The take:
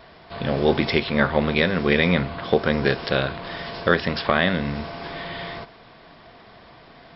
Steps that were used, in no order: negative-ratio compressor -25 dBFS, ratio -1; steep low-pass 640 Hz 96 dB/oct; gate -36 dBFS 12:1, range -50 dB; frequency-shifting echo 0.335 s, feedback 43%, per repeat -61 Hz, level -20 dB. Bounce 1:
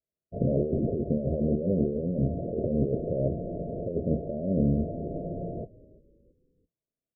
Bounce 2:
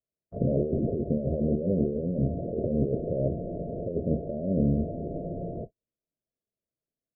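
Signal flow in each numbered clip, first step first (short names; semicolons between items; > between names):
gate > negative-ratio compressor > steep low-pass > frequency-shifting echo; negative-ratio compressor > steep low-pass > frequency-shifting echo > gate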